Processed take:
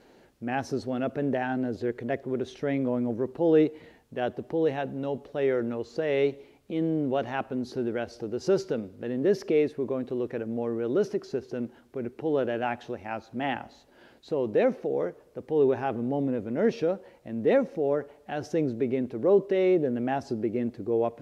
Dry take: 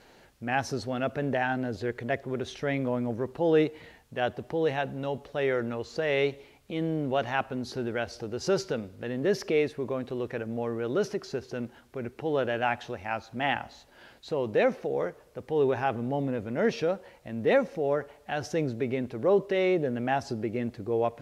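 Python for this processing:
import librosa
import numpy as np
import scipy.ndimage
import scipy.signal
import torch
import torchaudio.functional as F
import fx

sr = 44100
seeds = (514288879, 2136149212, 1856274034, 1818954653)

y = fx.peak_eq(x, sr, hz=310.0, db=9.5, octaves=2.0)
y = y * 10.0 ** (-5.5 / 20.0)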